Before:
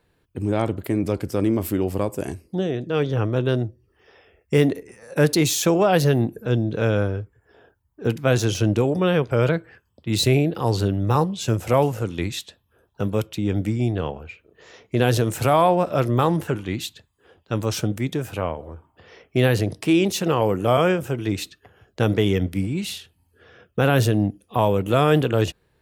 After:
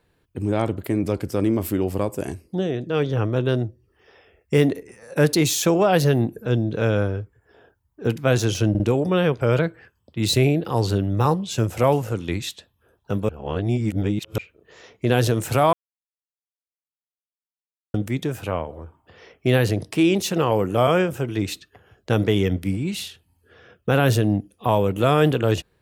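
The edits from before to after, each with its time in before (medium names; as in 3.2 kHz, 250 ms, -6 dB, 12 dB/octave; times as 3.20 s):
8.70 s: stutter 0.05 s, 3 plays
13.19–14.28 s: reverse
15.63–17.84 s: mute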